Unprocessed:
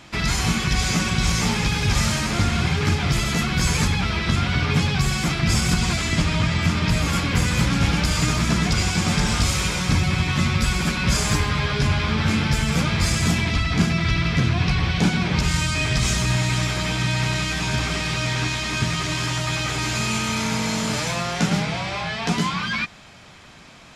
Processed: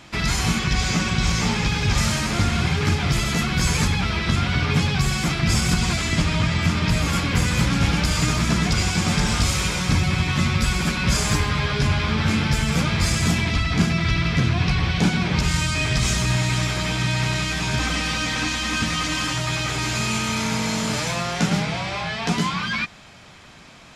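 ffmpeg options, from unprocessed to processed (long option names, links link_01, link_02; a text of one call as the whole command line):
ffmpeg -i in.wav -filter_complex "[0:a]asettb=1/sr,asplit=3[link_01][link_02][link_03];[link_01]atrim=end=0.594[link_04];[link_02]atrim=start=0.59:end=1.98,asetpts=PTS-STARTPTS,afade=type=in:duration=0.004:curve=qsin,afade=type=out:start_time=1.386:duration=0.004:curve=qsin,equalizer=frequency=11000:width_type=o:width=0.68:gain=-9[link_05];[link_03]atrim=start=1.976[link_06];[link_04][link_05]acrossfade=duration=0.004:curve1=hsin:curve2=qsin[link_07];[link_07][link_06]acrossfade=duration=0.004:curve1=qsin:curve2=hsin,asettb=1/sr,asplit=3[link_08][link_09][link_10];[link_08]atrim=end=17.794[link_11];[link_09]atrim=start=17.79:end=19.34,asetpts=PTS-STARTPTS,afade=type=in:duration=0.004:curve=qsin,afade=type=out:start_time=1.546:duration=0.004:curve=qsin,aecho=1:1:3.9:0.69,atrim=end_sample=68355[link_12];[link_10]atrim=start=19.336[link_13];[link_11][link_12]acrossfade=duration=0.004:curve1=hsin:curve2=qsin[link_14];[link_14][link_13]acrossfade=duration=0.004:curve1=qsin:curve2=hsin" out.wav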